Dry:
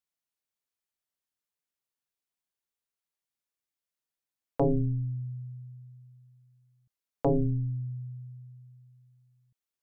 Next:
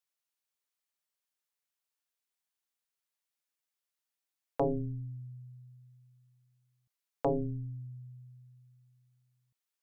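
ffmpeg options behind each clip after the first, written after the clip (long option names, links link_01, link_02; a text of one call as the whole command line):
ffmpeg -i in.wav -af "lowshelf=frequency=390:gain=-11.5,volume=1.5dB" out.wav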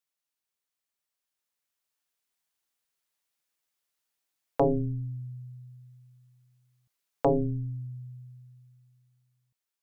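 ffmpeg -i in.wav -af "dynaudnorm=framelen=480:gausssize=7:maxgain=6dB" out.wav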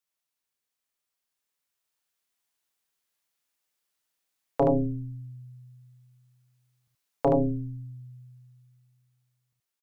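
ffmpeg -i in.wav -af "aecho=1:1:31|75:0.316|0.668" out.wav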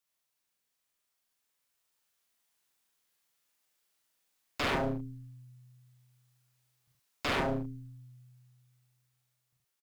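ffmpeg -i in.wav -filter_complex "[0:a]aeval=exprs='0.0422*(abs(mod(val(0)/0.0422+3,4)-2)-1)':channel_layout=same,asplit=2[link_01][link_02];[link_02]adelay=44,volume=-4.5dB[link_03];[link_01][link_03]amix=inputs=2:normalize=0,volume=1.5dB" out.wav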